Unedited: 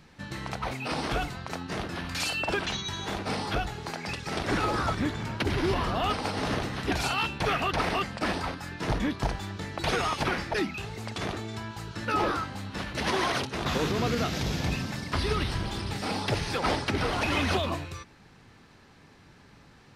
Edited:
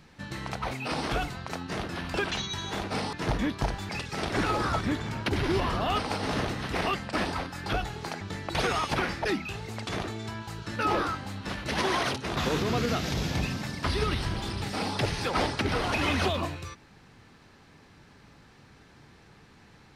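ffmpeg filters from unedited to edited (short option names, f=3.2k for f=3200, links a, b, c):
-filter_complex "[0:a]asplit=7[a][b][c][d][e][f][g];[a]atrim=end=2.142[h];[b]atrim=start=2.488:end=3.482[i];[c]atrim=start=8.738:end=9.502[j];[d]atrim=start=4.028:end=6.892[k];[e]atrim=start=7.828:end=8.742[l];[f]atrim=start=3.478:end=4.032[m];[g]atrim=start=9.498[n];[h][i]acrossfade=d=0.004:c1=hsin:c2=hsin[o];[o][j]acrossfade=d=0.004:c1=hsin:c2=hsin[p];[p][k]acrossfade=d=0.004:c1=hsin:c2=hsin[q];[q][l]acrossfade=d=0.004:c1=hsin:c2=hsin[r];[r][m]acrossfade=d=0.004:c1=hsin:c2=hsin[s];[s][n]acrossfade=d=0.004:c1=hsin:c2=hsin"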